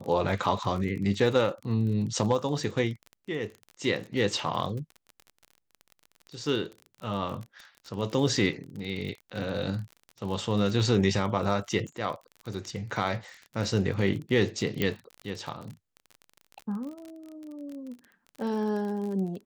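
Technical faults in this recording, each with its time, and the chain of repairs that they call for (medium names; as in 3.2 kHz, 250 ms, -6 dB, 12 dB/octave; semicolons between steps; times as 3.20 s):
crackle 36 per s -35 dBFS
14.82 s: pop -13 dBFS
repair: de-click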